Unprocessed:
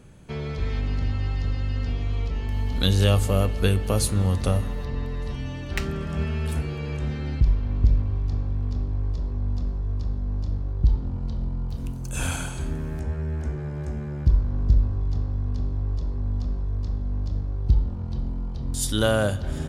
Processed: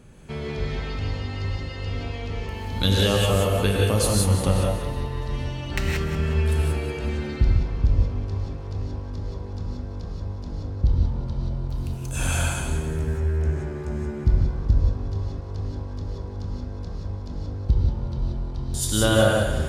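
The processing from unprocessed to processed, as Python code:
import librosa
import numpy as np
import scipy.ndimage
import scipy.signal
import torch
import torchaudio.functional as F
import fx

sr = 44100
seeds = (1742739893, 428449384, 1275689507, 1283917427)

p1 = x + fx.echo_feedback(x, sr, ms=185, feedback_pct=39, wet_db=-10.0, dry=0)
y = fx.rev_gated(p1, sr, seeds[0], gate_ms=200, shape='rising', drr_db=-1.5)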